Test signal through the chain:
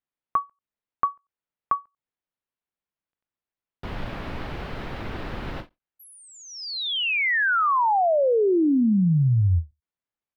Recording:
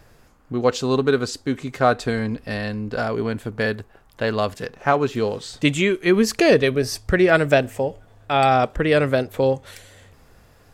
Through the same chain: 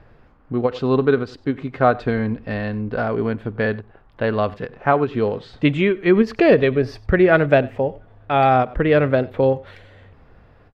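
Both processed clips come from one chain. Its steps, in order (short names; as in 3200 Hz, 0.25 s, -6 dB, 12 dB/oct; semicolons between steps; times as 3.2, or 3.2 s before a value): air absorption 370 m; echo 93 ms -21.5 dB; ending taper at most 330 dB/s; gain +3 dB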